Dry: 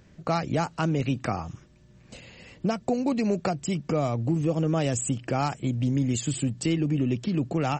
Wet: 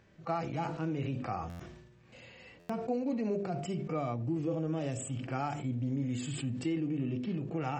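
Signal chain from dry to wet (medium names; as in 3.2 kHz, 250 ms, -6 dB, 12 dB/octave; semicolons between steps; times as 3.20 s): on a send at -16.5 dB: reverberation RT60 0.45 s, pre-delay 3 ms; on the sum: harmonic-percussive split percussive -18 dB; tone controls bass -8 dB, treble -8 dB; de-hum 49.93 Hz, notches 14; compression 3:1, threshold -32 dBFS, peak gain reduction 6.5 dB; buffer glitch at 1.49/2.59 s, samples 512, times 8; decay stretcher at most 49 dB/s; trim +1 dB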